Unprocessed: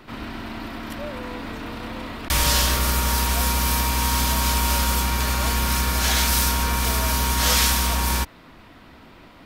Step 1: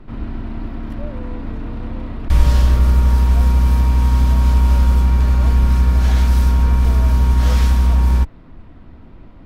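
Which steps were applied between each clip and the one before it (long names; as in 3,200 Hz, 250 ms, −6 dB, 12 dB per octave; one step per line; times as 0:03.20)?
spectral tilt −4 dB per octave
level −4 dB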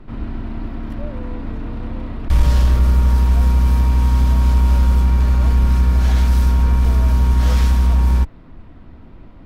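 soft clipping −3 dBFS, distortion −27 dB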